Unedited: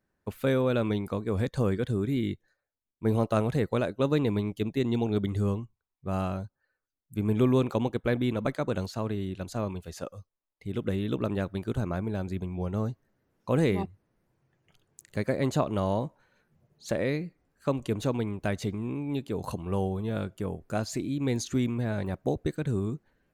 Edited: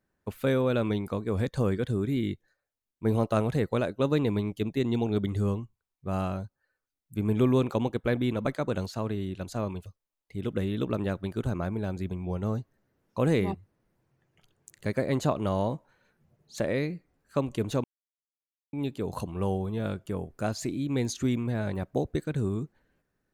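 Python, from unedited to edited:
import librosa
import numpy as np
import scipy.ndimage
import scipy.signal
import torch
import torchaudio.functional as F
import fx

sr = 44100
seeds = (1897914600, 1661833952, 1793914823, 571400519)

y = fx.edit(x, sr, fx.cut(start_s=9.86, length_s=0.31),
    fx.silence(start_s=18.15, length_s=0.89), tone=tone)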